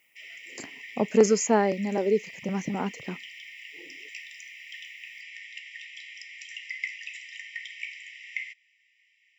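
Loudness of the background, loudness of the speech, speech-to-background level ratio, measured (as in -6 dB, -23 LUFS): -40.0 LUFS, -25.5 LUFS, 14.5 dB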